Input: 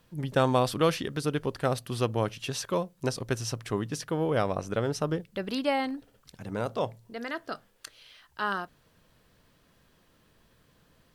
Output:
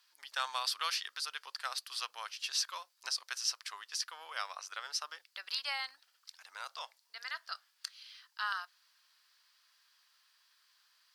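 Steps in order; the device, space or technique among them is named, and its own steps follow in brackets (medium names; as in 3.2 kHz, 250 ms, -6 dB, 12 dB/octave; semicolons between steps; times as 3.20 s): headphones lying on a table (high-pass 1.1 kHz 24 dB/octave; peaking EQ 4.8 kHz +11 dB 0.6 oct); trim -4 dB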